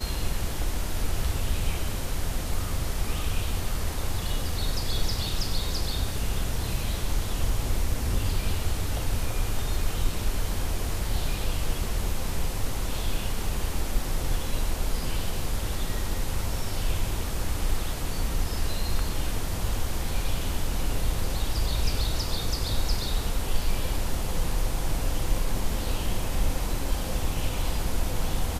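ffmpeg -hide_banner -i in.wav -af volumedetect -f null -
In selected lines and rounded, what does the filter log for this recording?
mean_volume: -24.8 dB
max_volume: -10.9 dB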